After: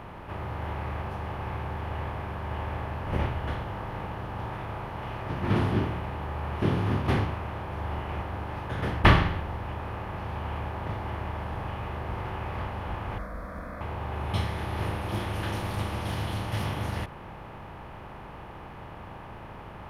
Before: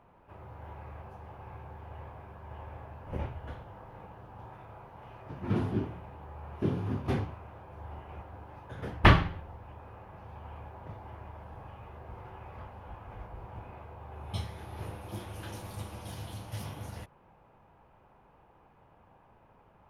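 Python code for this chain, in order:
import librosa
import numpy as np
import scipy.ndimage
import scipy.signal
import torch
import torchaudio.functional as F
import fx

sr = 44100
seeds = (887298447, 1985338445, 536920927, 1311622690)

y = fx.bin_compress(x, sr, power=0.6)
y = fx.fixed_phaser(y, sr, hz=570.0, stages=8, at=(13.18, 13.81))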